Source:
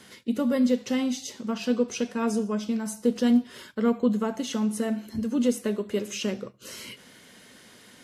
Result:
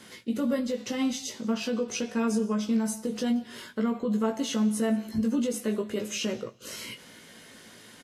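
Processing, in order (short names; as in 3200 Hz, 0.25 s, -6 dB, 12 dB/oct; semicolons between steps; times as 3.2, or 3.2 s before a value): limiter -21 dBFS, peak gain reduction 9.5 dB; doubler 18 ms -4 dB; on a send: feedback echo 0.178 s, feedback 19%, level -24 dB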